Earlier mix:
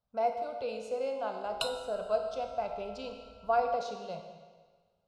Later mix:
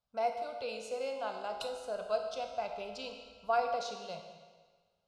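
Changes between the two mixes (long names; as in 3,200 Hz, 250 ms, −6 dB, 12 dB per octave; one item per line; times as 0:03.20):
speech: add tilt shelving filter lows −5 dB, about 1,300 Hz
background −10.0 dB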